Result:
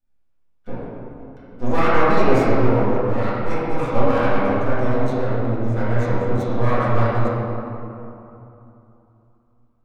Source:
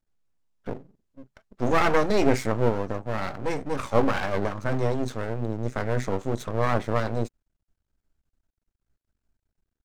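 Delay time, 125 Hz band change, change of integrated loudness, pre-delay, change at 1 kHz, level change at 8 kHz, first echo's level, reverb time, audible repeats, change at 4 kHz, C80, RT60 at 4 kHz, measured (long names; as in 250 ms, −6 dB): no echo audible, +7.5 dB, +6.0 dB, 4 ms, +6.5 dB, can't be measured, no echo audible, 3.0 s, no echo audible, +0.5 dB, −2.5 dB, 1.6 s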